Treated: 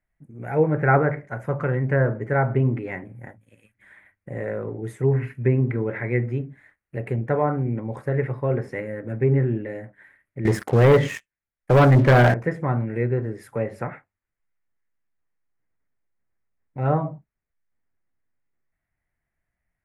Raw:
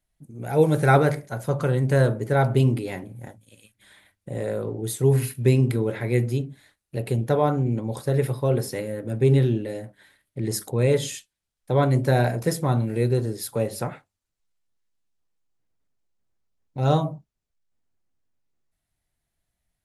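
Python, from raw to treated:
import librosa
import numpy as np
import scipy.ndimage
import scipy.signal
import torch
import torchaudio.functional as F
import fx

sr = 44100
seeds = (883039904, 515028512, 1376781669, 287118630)

y = fx.env_lowpass_down(x, sr, base_hz=1700.0, full_db=-14.5)
y = fx.high_shelf_res(y, sr, hz=2800.0, db=-12.0, q=3.0)
y = fx.leveller(y, sr, passes=3, at=(10.45, 12.34))
y = y * 10.0 ** (-1.5 / 20.0)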